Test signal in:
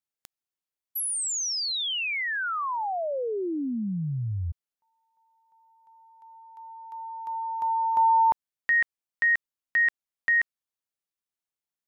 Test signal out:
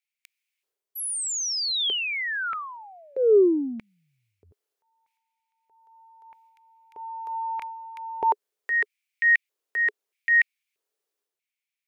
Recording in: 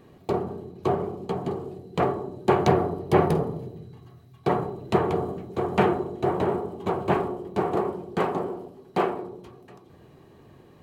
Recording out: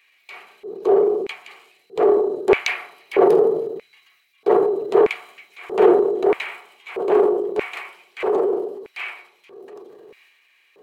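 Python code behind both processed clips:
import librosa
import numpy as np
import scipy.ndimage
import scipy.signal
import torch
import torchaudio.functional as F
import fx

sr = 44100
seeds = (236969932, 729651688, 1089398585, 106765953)

y = fx.filter_lfo_highpass(x, sr, shape='square', hz=0.79, low_hz=420.0, high_hz=2300.0, q=6.2)
y = fx.transient(y, sr, attack_db=-6, sustain_db=6)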